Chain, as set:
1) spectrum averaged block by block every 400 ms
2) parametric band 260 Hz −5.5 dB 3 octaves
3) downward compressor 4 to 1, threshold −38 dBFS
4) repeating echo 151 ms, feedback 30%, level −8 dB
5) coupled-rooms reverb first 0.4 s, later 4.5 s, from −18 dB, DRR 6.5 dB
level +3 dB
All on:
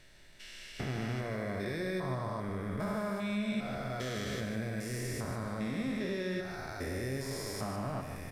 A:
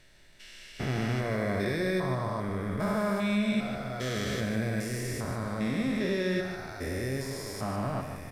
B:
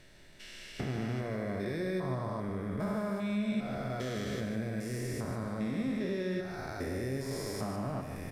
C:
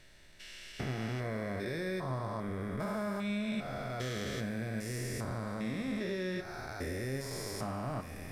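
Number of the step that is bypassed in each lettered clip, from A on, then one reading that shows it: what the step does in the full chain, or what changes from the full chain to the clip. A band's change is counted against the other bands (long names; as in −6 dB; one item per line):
3, 8 kHz band −2.0 dB
2, change in integrated loudness +1.0 LU
4, echo-to-direct ratio −3.5 dB to −6.5 dB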